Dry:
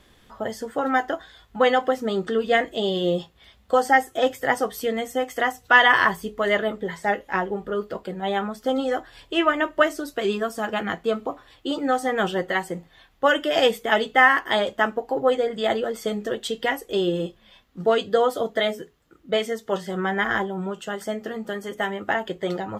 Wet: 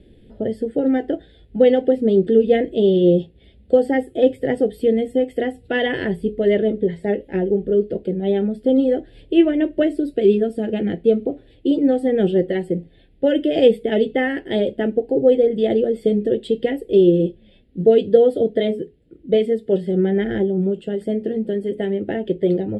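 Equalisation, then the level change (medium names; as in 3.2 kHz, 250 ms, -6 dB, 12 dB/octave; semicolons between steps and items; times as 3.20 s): steep low-pass 11 kHz 72 dB/octave; resonant low shelf 660 Hz +13.5 dB, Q 1.5; static phaser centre 2.7 kHz, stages 4; -4.5 dB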